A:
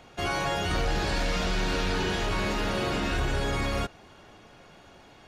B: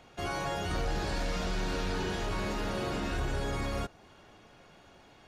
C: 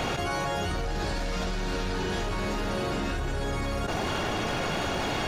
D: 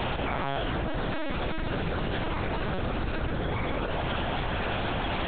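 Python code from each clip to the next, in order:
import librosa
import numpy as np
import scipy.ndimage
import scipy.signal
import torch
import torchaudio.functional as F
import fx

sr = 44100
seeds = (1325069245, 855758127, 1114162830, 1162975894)

y1 = fx.dynamic_eq(x, sr, hz=2700.0, q=0.81, threshold_db=-47.0, ratio=4.0, max_db=-4)
y1 = y1 * librosa.db_to_amplitude(-4.5)
y2 = fx.env_flatten(y1, sr, amount_pct=100)
y3 = fx.lpc_vocoder(y2, sr, seeds[0], excitation='pitch_kept', order=8)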